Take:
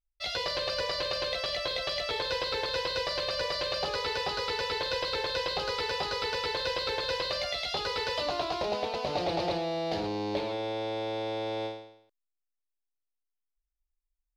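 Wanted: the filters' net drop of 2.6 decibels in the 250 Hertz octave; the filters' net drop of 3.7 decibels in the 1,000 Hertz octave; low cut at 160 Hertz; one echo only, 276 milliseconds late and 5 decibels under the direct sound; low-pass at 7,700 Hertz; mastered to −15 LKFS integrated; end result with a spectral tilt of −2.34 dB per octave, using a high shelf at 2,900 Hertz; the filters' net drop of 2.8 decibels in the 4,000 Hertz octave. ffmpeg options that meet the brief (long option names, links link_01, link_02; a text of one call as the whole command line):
ffmpeg -i in.wav -af "highpass=160,lowpass=7700,equalizer=frequency=250:width_type=o:gain=-3,equalizer=frequency=1000:width_type=o:gain=-5,highshelf=frequency=2900:gain=8,equalizer=frequency=4000:width_type=o:gain=-9,aecho=1:1:276:0.562,volume=17dB" out.wav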